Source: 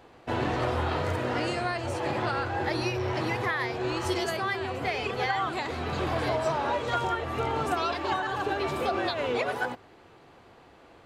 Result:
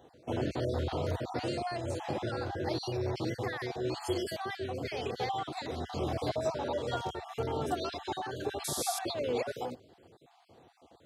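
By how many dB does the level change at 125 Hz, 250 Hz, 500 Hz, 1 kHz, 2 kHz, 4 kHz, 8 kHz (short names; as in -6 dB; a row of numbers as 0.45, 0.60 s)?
-4.0, -4.0, -4.0, -8.0, -12.0, -5.0, +3.5 dB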